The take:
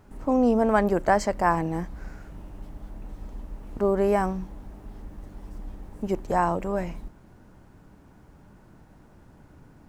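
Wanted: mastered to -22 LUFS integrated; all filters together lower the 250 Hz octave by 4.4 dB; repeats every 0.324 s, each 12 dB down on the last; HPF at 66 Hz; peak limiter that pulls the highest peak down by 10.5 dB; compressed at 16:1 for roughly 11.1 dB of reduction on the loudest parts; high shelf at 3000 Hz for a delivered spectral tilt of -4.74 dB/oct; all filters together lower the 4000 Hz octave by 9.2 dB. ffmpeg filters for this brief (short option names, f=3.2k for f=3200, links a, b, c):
-af "highpass=66,equalizer=f=250:t=o:g=-5.5,highshelf=f=3k:g=-6,equalizer=f=4k:t=o:g=-8,acompressor=threshold=-28dB:ratio=16,alimiter=level_in=3dB:limit=-24dB:level=0:latency=1,volume=-3dB,aecho=1:1:324|648|972:0.251|0.0628|0.0157,volume=17.5dB"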